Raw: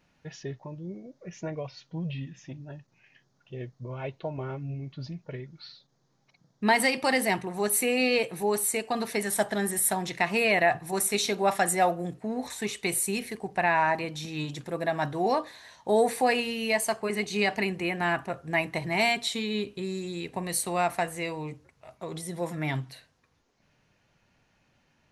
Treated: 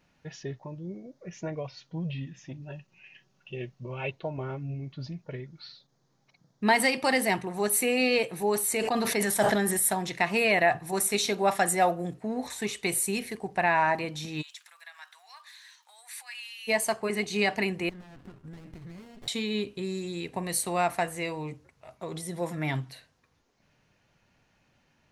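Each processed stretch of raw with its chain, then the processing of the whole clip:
0:02.62–0:04.11: parametric band 2,700 Hz +13 dB 0.36 octaves + comb filter 5.3 ms, depth 44%
0:08.55–0:09.77: parametric band 8,600 Hz −3 dB 0.39 octaves + level that may fall only so fast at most 22 dB per second
0:14.41–0:16.67: downward compressor 2.5 to 1, threshold −36 dBFS + surface crackle 190 per second −56 dBFS + Bessel high-pass filter 1,800 Hz, order 6
0:17.89–0:19.28: Chebyshev band-stop filter 420–990 Hz, order 4 + downward compressor 10 to 1, threshold −40 dBFS + windowed peak hold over 33 samples
whole clip: no processing

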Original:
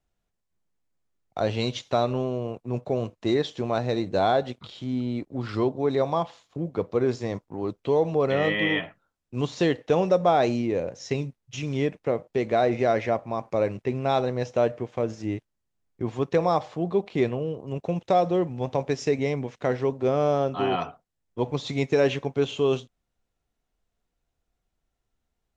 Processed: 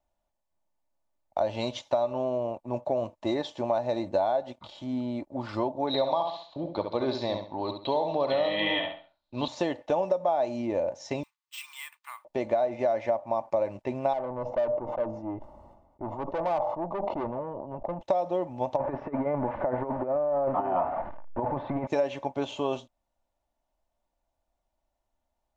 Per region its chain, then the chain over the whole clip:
0:05.87–0:09.48: low-pass with resonance 4,000 Hz, resonance Q 11 + repeating echo 68 ms, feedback 30%, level −7 dB
0:11.23–0:12.25: elliptic high-pass filter 1,100 Hz, stop band 50 dB + high-shelf EQ 5,300 Hz +11 dB + bad sample-rate conversion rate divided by 4×, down filtered, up hold
0:14.13–0:18.01: Savitzky-Golay smoothing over 65 samples + tube saturation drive 26 dB, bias 0.25 + level that may fall only so fast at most 55 dB per second
0:18.76–0:21.87: converter with a step at zero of −31 dBFS + low-pass filter 1,700 Hz 24 dB per octave + compressor whose output falls as the input rises −25 dBFS, ratio −0.5
whole clip: flat-topped bell 770 Hz +11.5 dB 1.1 octaves; comb filter 3.4 ms, depth 43%; downward compressor 6 to 1, threshold −18 dBFS; level −5 dB

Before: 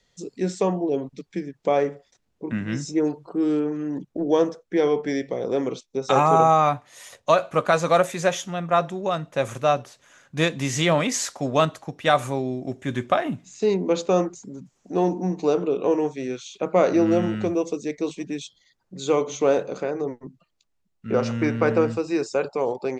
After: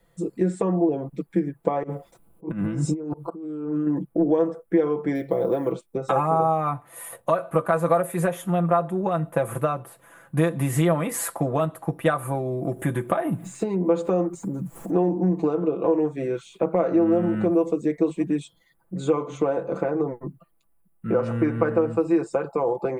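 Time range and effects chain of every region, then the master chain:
0:01.83–0:03.87: parametric band 1,800 Hz −12 dB 0.31 octaves + compressor whose output falls as the input rises −34 dBFS + volume swells 187 ms
0:05.15–0:05.72: parametric band 4,100 Hz +13 dB 0.25 octaves + floating-point word with a short mantissa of 6 bits
0:12.35–0:14.93: high-shelf EQ 8,600 Hz +8 dB + upward compression, threshold −27 dBFS
whole clip: drawn EQ curve 1,200 Hz 0 dB, 6,100 Hz −22 dB, 10,000 Hz +8 dB; downward compressor 6 to 1, threshold −26 dBFS; comb filter 6 ms; level +5.5 dB

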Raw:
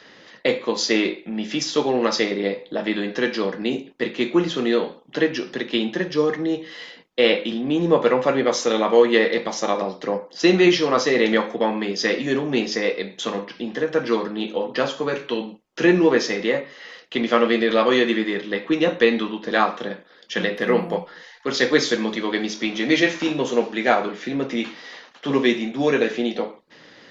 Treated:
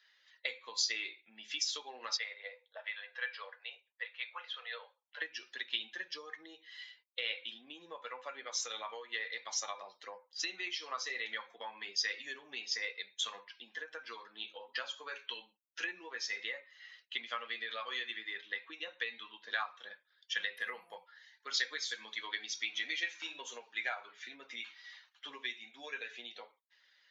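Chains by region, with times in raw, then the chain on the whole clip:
0:02.17–0:05.22: elliptic high-pass filter 490 Hz, stop band 50 dB + high-frequency loss of the air 200 metres
whole clip: spectral dynamics exaggerated over time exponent 1.5; downward compressor 5 to 1, threshold −29 dBFS; high-pass filter 1,400 Hz 12 dB per octave

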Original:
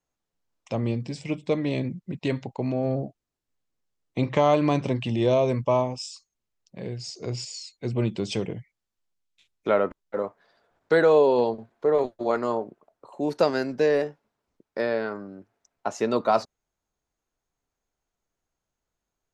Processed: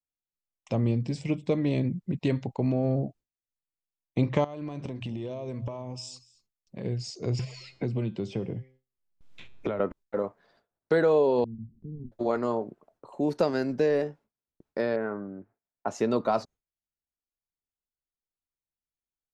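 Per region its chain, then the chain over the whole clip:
0:04.44–0:06.85: mains-hum notches 60/120/180 Hz + downward compressor 12 to 1, threshold −33 dBFS + single-tap delay 231 ms −20.5 dB
0:07.39–0:09.80: low-pass filter 2,200 Hz 6 dB per octave + tuned comb filter 130 Hz, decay 0.49 s, mix 50% + multiband upward and downward compressor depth 100%
0:11.44–0:12.12: upward compression, threshold −28 dBFS + inverse Chebyshev low-pass filter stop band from 540 Hz, stop band 50 dB
0:14.96–0:15.88: low-pass filter 2,100 Hz 24 dB per octave + low-shelf EQ 140 Hz −4.5 dB
whole clip: downward compressor 1.5 to 1, threshold −27 dBFS; noise gate with hold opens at −53 dBFS; low-shelf EQ 390 Hz +7.5 dB; level −2.5 dB

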